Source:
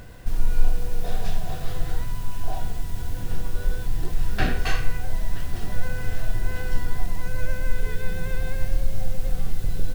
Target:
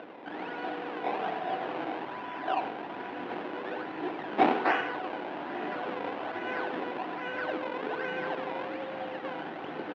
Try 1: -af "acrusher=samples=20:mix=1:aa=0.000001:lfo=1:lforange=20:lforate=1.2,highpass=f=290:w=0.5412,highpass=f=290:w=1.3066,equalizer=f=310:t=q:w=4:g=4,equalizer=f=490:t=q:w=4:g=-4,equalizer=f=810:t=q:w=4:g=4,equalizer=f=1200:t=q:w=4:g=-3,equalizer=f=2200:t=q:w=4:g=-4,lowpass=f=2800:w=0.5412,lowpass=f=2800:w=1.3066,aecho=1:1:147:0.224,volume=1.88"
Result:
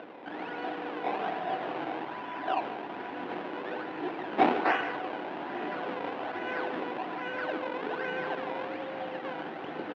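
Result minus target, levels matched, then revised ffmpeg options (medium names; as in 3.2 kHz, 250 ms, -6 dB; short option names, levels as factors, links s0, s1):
echo 51 ms late
-af "acrusher=samples=20:mix=1:aa=0.000001:lfo=1:lforange=20:lforate=1.2,highpass=f=290:w=0.5412,highpass=f=290:w=1.3066,equalizer=f=310:t=q:w=4:g=4,equalizer=f=490:t=q:w=4:g=-4,equalizer=f=810:t=q:w=4:g=4,equalizer=f=1200:t=q:w=4:g=-3,equalizer=f=2200:t=q:w=4:g=-4,lowpass=f=2800:w=0.5412,lowpass=f=2800:w=1.3066,aecho=1:1:96:0.224,volume=1.88"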